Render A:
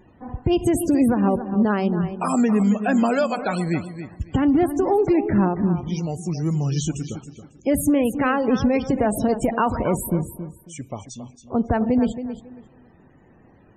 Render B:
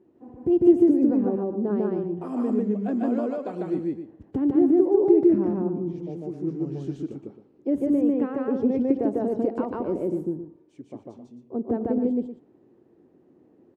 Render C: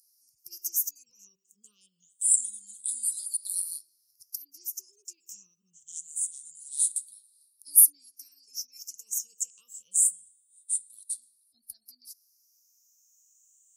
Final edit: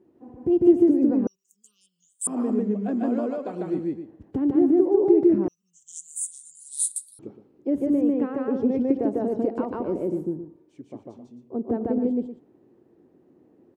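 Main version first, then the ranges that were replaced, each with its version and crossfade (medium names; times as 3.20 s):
B
1.27–2.27 s: from C
5.48–7.19 s: from C
not used: A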